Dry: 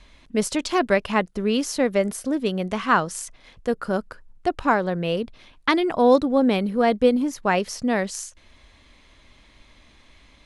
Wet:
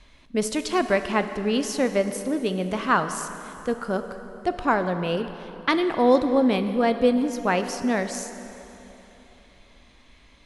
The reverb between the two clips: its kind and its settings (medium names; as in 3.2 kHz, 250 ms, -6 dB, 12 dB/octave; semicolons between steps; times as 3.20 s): plate-style reverb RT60 3.4 s, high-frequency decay 0.7×, DRR 8.5 dB; trim -2 dB